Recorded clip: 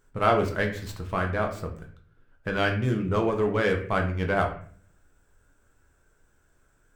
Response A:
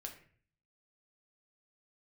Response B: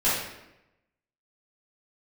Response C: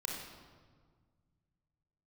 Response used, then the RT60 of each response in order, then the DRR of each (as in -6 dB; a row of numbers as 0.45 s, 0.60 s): A; 0.50 s, 0.90 s, 1.7 s; 2.0 dB, -12.0 dB, -1.5 dB